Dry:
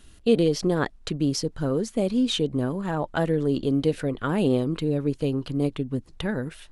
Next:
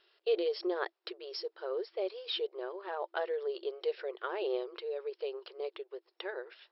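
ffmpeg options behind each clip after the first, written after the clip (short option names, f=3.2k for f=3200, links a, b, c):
-af "afftfilt=real='re*between(b*sr/4096,340,5500)':imag='im*between(b*sr/4096,340,5500)':win_size=4096:overlap=0.75,volume=-8dB"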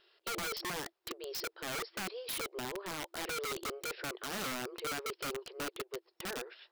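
-af "bass=f=250:g=7,treble=f=4k:g=1,alimiter=level_in=5dB:limit=-24dB:level=0:latency=1:release=19,volume=-5dB,aeval=exprs='(mod(50.1*val(0)+1,2)-1)/50.1':c=same,volume=1dB"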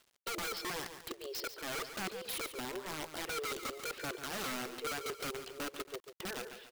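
-af "aphaser=in_gain=1:out_gain=1:delay=3.8:decay=0.28:speed=0.97:type=sinusoidal,aecho=1:1:142|278:0.299|0.141,acrusher=bits=9:mix=0:aa=0.000001,volume=-1.5dB"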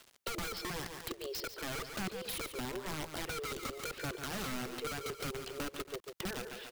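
-filter_complex "[0:a]acrossover=split=190[a][b];[b]acompressor=threshold=-51dB:ratio=3[c];[a][c]amix=inputs=2:normalize=0,volume=9.5dB"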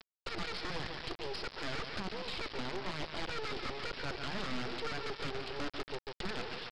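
-af "aresample=11025,acrusher=bits=5:dc=4:mix=0:aa=0.000001,aresample=44100,asoftclip=type=tanh:threshold=-35.5dB,volume=7dB"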